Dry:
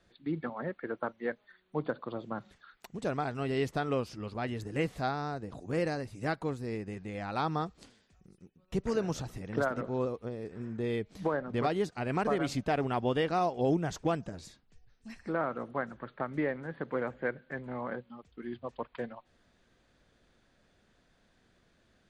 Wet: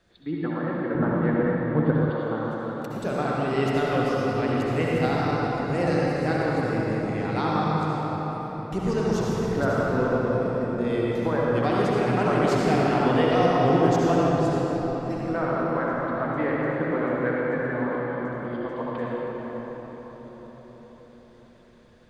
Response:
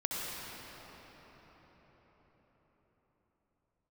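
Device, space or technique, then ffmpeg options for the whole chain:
cathedral: -filter_complex "[1:a]atrim=start_sample=2205[s0];[0:a][s0]afir=irnorm=-1:irlink=0,asettb=1/sr,asplit=3[s1][s2][s3];[s1]atrim=end=0.954[s4];[s2]atrim=start=0.95:end=2.1,asetpts=PTS-STARTPTS,afade=t=in:d=0.004:c=qsin,afade=t=out:st=1.146:d=0.004:c=qsin,bass=f=250:g=14,treble=f=4000:g=-6[s5];[s3]atrim=start=2.096[s6];[s4][s5]acrossfade=d=0.004:c1=hsin:c2=qsin[s7];[s7][s6]acrossfade=d=0.004:c1=qsin:c2=hsin,volume=1.5"

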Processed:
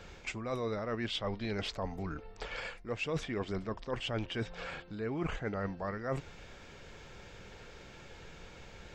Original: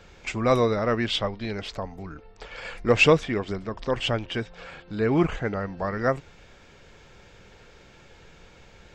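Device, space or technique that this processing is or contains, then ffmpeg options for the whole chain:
compression on the reversed sound: -af "areverse,acompressor=threshold=0.0251:ratio=20,areverse"

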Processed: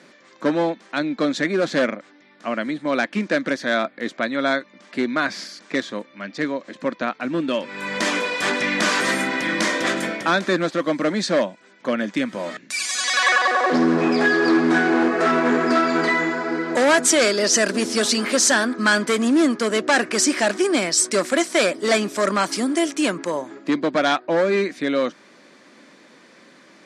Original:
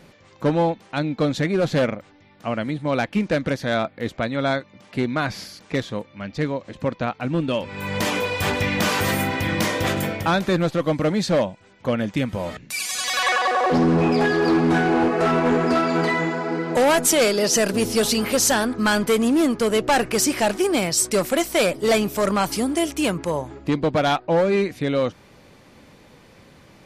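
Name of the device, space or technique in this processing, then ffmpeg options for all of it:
television speaker: -af "highpass=f=230:w=0.5412,highpass=f=230:w=1.3066,equalizer=f=460:t=q:w=4:g=-6,equalizer=f=820:t=q:w=4:g=-7,equalizer=f=1700:t=q:w=4:g=4,equalizer=f=2800:t=q:w=4:g=-4,lowpass=f=9000:w=0.5412,lowpass=f=9000:w=1.3066,volume=1.41"

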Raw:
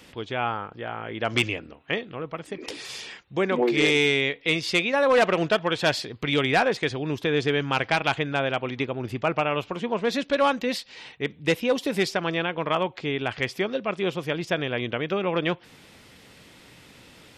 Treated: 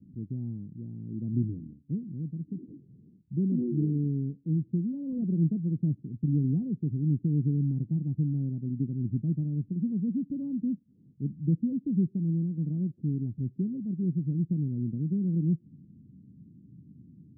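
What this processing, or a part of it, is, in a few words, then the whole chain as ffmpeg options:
the neighbour's flat through the wall: -af "highpass=100,lowpass=f=230:w=0.5412,lowpass=f=230:w=1.3066,equalizer=f=160:t=o:w=0.7:g=4,lowshelf=f=420:t=q:w=1.5:g=7.5,volume=0.631"

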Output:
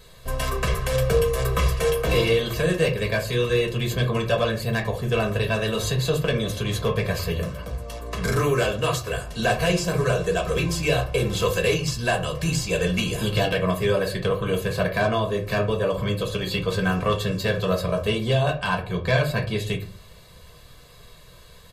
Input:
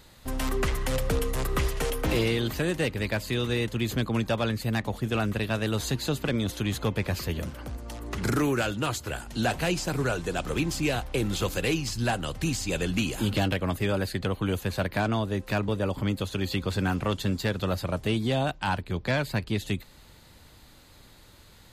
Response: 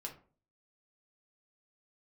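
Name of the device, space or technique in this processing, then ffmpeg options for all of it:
microphone above a desk: -filter_complex "[0:a]aecho=1:1:1.8:0.74[s0];[1:a]atrim=start_sample=2205[s1];[s0][s1]afir=irnorm=-1:irlink=0,volume=1.88"

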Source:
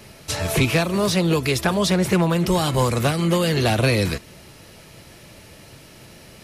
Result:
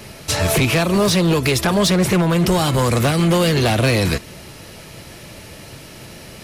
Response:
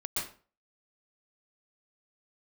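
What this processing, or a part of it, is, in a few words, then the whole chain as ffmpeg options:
limiter into clipper: -af "alimiter=limit=0.211:level=0:latency=1:release=128,asoftclip=type=hard:threshold=0.119,volume=2.24"

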